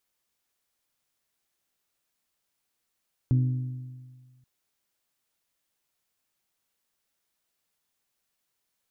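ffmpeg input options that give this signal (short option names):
-f lavfi -i "aevalsrc='0.133*pow(10,-3*t/1.65)*sin(2*PI*127*t)+0.0422*pow(10,-3*t/1.34)*sin(2*PI*254*t)+0.0133*pow(10,-3*t/1.269)*sin(2*PI*304.8*t)+0.00422*pow(10,-3*t/1.187)*sin(2*PI*381*t)+0.00133*pow(10,-3*t/1.089)*sin(2*PI*508*t)':d=1.13:s=44100"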